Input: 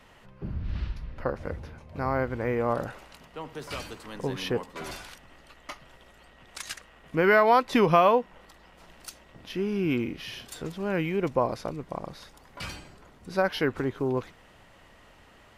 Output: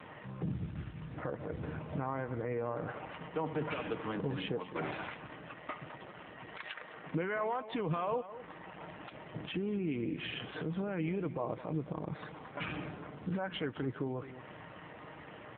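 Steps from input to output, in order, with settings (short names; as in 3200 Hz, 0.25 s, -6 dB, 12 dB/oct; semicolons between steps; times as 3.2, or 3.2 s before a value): Wiener smoothing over 9 samples; 6.59–7.22 HPF 360 Hz -> 92 Hz 12 dB/oct; companded quantiser 6-bit; compressor 4:1, threshold -38 dBFS, peak gain reduction 19 dB; limiter -35.5 dBFS, peak gain reduction 11.5 dB; comb 6.5 ms, depth 34%; outdoor echo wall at 36 m, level -13 dB; gain +9 dB; AMR-NB 7.4 kbps 8000 Hz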